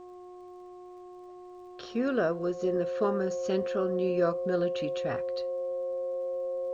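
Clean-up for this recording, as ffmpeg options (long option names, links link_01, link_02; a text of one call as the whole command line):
ffmpeg -i in.wav -af "adeclick=threshold=4,bandreject=frequency=360.7:width_type=h:width=4,bandreject=frequency=721.4:width_type=h:width=4,bandreject=frequency=1082.1:width_type=h:width=4,bandreject=frequency=530:width=30,agate=range=-21dB:threshold=-39dB" out.wav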